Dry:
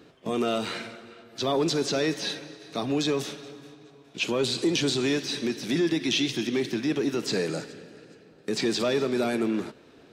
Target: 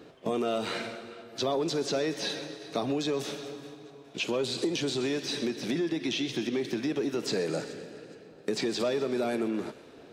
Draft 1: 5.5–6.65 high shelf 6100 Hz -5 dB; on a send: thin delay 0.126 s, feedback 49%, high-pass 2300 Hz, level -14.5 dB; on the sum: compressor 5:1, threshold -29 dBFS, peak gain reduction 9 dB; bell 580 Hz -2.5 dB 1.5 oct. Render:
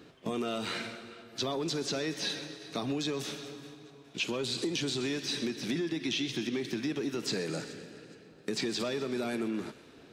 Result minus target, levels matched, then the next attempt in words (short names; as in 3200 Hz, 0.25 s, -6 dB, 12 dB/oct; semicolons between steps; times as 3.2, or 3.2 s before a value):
500 Hz band -2.5 dB
5.5–6.65 high shelf 6100 Hz -5 dB; on a send: thin delay 0.126 s, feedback 49%, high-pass 2300 Hz, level -14.5 dB; on the sum: compressor 5:1, threshold -29 dBFS, peak gain reduction 9 dB; bell 580 Hz +5 dB 1.5 oct